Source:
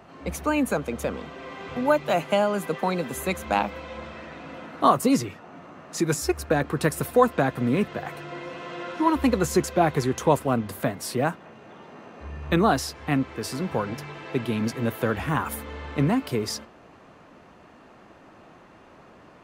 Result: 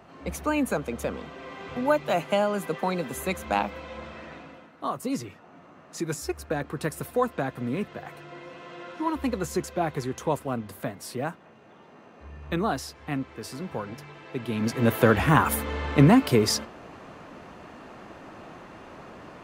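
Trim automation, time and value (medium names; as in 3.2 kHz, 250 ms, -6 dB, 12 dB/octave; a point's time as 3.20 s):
4.35 s -2 dB
4.76 s -14 dB
5.27 s -6.5 dB
14.36 s -6.5 dB
14.94 s +6 dB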